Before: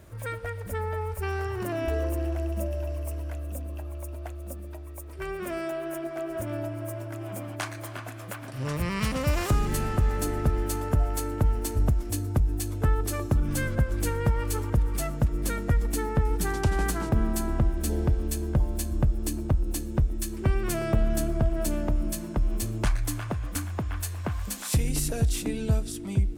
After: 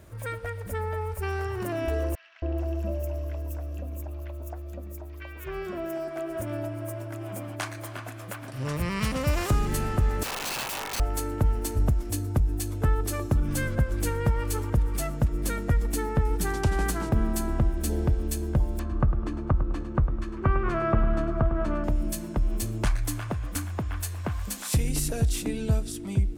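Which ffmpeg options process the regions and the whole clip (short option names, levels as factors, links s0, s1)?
-filter_complex "[0:a]asettb=1/sr,asplit=3[s0][s1][s2];[s0]atrim=end=2.154[s3];[s1]atrim=start=2.15:end=6.08,asetpts=PTS-STARTPTS,afade=t=in:d=0.004:c=qsin,afade=t=out:st=3.926:d=0.004:c=qsin,equalizer=f=9100:w=3:g=-11,acrossover=split=1500|4500[s4][s5][s6];[s4]adelay=270[s7];[s6]adelay=430[s8];[s7][s5][s8]amix=inputs=3:normalize=0,atrim=end_sample=173313[s9];[s2]atrim=start=6.076[s10];[s3][s9]acrossfade=d=0.004:c1=hsin:c2=qsin[s11];[s11][s10]acrossfade=d=0.004:c1=qsin:c2=hsin,asettb=1/sr,asplit=3[s12][s13][s14];[s12]atrim=end=10.234[s15];[s13]atrim=start=10.23:end=11,asetpts=PTS-STARTPTS,afade=t=in:d=0.004:c=qsin,afade=t=out:st=0.766:d=0.004:c=qsin,aeval=exprs='val(0)*sin(2*PI*880*n/s)':c=same,aeval=exprs='(mod(20*val(0)+1,2)-1)/20':c=same,bandreject=f=50:t=h:w=6,bandreject=f=100:t=h:w=6,bandreject=f=150:t=h:w=6,bandreject=f=200:t=h:w=6,bandreject=f=250:t=h:w=6,bandreject=f=300:t=h:w=6,bandreject=f=350:t=h:w=6,bandreject=f=400:t=h:w=6,bandreject=f=450:t=h:w=6[s16];[s14]atrim=start=10.996[s17];[s15][s16]acrossfade=d=0.004:c1=hsin:c2=qsin[s18];[s18][s17]acrossfade=d=0.004:c1=qsin:c2=hsin,asettb=1/sr,asplit=3[s19][s20][s21];[s19]atrim=end=18.794[s22];[s20]atrim=start=18.79:end=21.84,asetpts=PTS-STARTPTS,afade=t=in:d=0.004:c=qsin,afade=t=out:st=3.046:d=0.004:c=qsin,lowpass=2200,equalizer=f=1200:w=2.1:g=12,aecho=1:1:103|206|309|412:0.266|0.0958|0.0345|0.0124,atrim=end_sample=134505[s23];[s21]atrim=start=21.836[s24];[s22][s23]acrossfade=d=0.004:c1=hsin:c2=qsin[s25];[s25][s24]acrossfade=d=0.004:c1=qsin:c2=hsin"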